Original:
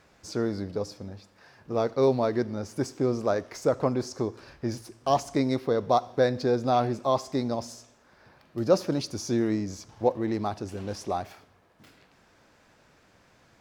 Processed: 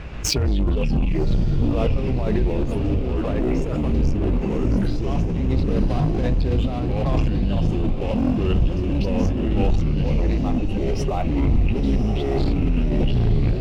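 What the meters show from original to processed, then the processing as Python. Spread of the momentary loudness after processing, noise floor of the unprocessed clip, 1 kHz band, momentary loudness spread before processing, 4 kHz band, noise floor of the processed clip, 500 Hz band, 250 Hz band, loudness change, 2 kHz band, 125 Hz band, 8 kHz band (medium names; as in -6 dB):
3 LU, -61 dBFS, -2.5 dB, 11 LU, +6.5 dB, -24 dBFS, +0.5 dB, +8.0 dB, +5.5 dB, +4.5 dB, +15.0 dB, no reading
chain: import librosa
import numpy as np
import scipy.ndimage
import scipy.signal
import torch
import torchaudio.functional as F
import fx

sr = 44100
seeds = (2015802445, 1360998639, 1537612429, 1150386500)

p1 = fx.octave_divider(x, sr, octaves=2, level_db=-4.0)
p2 = fx.noise_reduce_blind(p1, sr, reduce_db=21)
p3 = fx.echo_pitch(p2, sr, ms=130, semitones=-5, count=3, db_per_echo=-3.0)
p4 = fx.over_compress(p3, sr, threshold_db=-33.0, ratio=-1.0)
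p5 = fx.riaa(p4, sr, side='playback')
p6 = 10.0 ** (-8.5 / 20.0) * np.tanh(p5 / 10.0 ** (-8.5 / 20.0))
p7 = fx.leveller(p6, sr, passes=2)
p8 = fx.peak_eq(p7, sr, hz=2700.0, db=12.0, octaves=0.67)
p9 = p8 + fx.echo_diffused(p8, sr, ms=1082, feedback_pct=47, wet_db=-6, dry=0)
p10 = fx.pre_swell(p9, sr, db_per_s=22.0)
y = F.gain(torch.from_numpy(p10), -5.0).numpy()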